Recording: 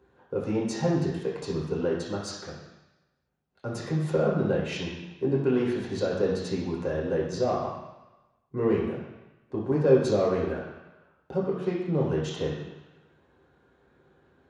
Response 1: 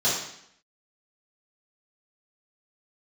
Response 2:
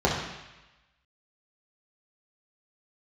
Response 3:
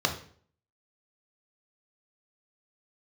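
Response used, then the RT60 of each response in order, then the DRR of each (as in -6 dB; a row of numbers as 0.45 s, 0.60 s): 2; 0.70 s, 1.0 s, 0.50 s; -10.5 dB, -5.0 dB, 3.5 dB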